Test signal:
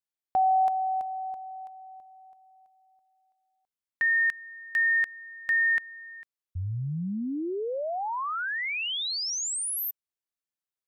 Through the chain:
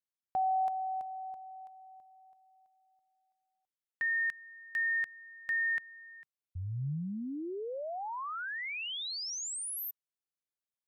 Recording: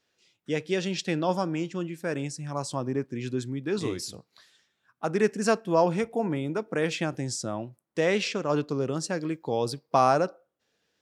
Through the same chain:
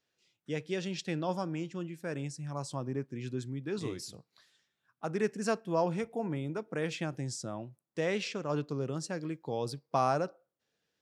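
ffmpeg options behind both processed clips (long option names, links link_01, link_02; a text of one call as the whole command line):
ffmpeg -i in.wav -af "equalizer=frequency=140:width=2.4:gain=4.5,volume=-7.5dB" out.wav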